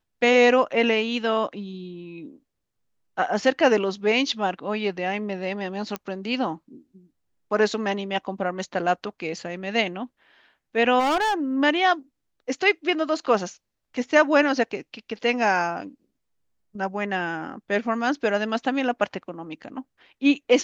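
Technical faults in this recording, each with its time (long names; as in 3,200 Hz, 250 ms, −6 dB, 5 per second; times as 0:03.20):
0:05.96: click −14 dBFS
0:10.99–0:11.34: clipping −19.5 dBFS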